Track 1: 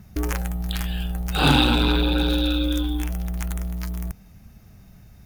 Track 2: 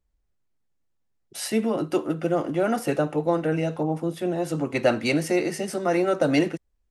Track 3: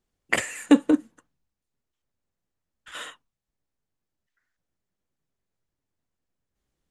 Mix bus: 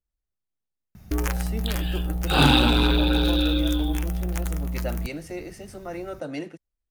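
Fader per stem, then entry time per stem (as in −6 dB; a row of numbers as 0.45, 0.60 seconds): 0.0 dB, −12.0 dB, muted; 0.95 s, 0.00 s, muted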